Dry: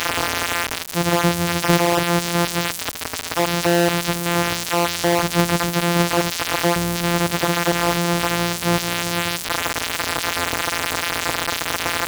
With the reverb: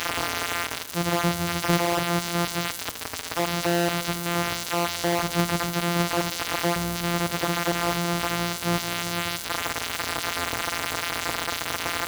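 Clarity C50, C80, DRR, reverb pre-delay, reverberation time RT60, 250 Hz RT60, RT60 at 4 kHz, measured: 13.5 dB, 15.5 dB, 11.0 dB, 4 ms, 1.1 s, 1.1 s, 1.0 s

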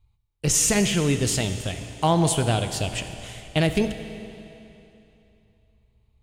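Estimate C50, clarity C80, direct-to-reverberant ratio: 8.5 dB, 9.5 dB, 7.5 dB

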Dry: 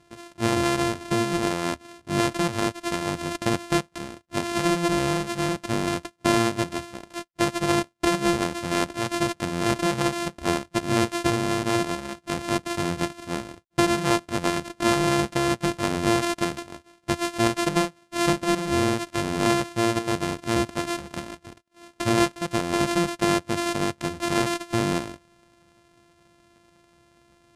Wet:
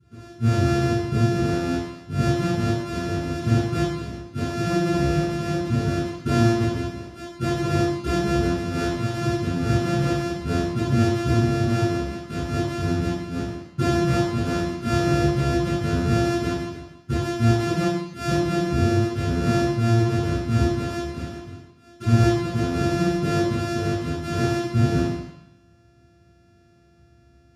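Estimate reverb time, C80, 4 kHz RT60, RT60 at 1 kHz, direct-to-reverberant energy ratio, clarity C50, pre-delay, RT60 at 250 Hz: 0.80 s, 2.5 dB, 0.90 s, 0.85 s, -18.5 dB, -2.0 dB, 3 ms, 0.85 s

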